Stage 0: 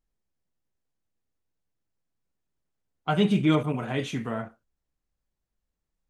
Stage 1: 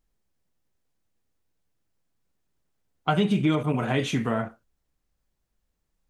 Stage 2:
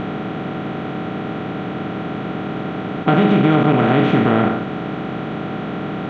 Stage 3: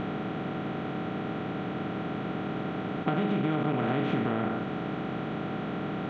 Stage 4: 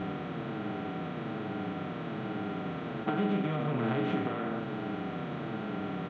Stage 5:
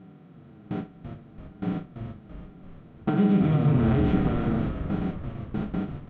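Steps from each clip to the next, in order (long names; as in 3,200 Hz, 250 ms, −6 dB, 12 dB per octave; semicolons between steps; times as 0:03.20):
downward compressor 6 to 1, threshold −25 dBFS, peak gain reduction 8.5 dB; level +6 dB
compressor on every frequency bin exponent 0.2; high-frequency loss of the air 390 metres; level +4.5 dB
downward compressor, threshold −16 dBFS, peak gain reduction 7 dB; level −8 dB
high-pass filter 42 Hz; barber-pole flanger 7.5 ms −1.2 Hz
noise gate with hold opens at −25 dBFS; parametric band 150 Hz +12.5 dB 2.4 octaves; echo with shifted repeats 336 ms, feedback 55%, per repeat −67 Hz, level −8 dB; level −1 dB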